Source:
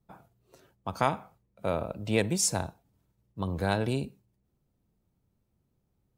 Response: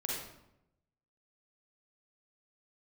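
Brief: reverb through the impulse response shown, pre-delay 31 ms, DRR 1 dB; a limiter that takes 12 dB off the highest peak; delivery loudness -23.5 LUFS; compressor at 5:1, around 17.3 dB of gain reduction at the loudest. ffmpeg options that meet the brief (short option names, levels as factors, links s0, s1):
-filter_complex "[0:a]acompressor=threshold=0.01:ratio=5,alimiter=level_in=3.35:limit=0.0631:level=0:latency=1,volume=0.299,asplit=2[s0][s1];[1:a]atrim=start_sample=2205,adelay=31[s2];[s1][s2]afir=irnorm=-1:irlink=0,volume=0.631[s3];[s0][s3]amix=inputs=2:normalize=0,volume=12.6"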